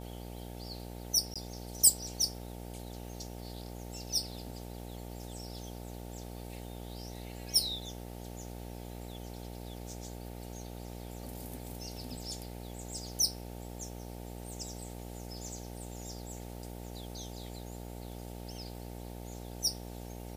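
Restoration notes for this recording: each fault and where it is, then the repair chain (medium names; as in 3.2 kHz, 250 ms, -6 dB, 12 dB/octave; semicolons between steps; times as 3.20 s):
buzz 60 Hz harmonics 15 -44 dBFS
1.34–1.36 s: dropout 16 ms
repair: de-hum 60 Hz, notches 15; interpolate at 1.34 s, 16 ms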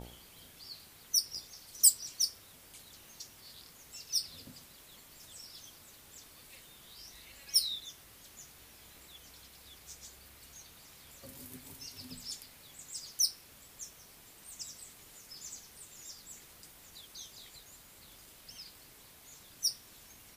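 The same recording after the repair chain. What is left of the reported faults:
nothing left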